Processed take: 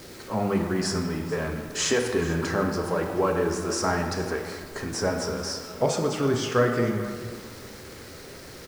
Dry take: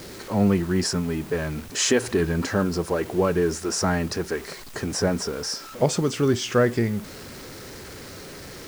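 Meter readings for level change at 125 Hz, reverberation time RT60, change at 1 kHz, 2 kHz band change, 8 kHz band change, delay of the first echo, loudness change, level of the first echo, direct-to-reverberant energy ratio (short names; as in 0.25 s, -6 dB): -3.5 dB, 1.9 s, +1.5 dB, -0.5 dB, -3.5 dB, 0.436 s, -2.5 dB, -18.5 dB, 3.0 dB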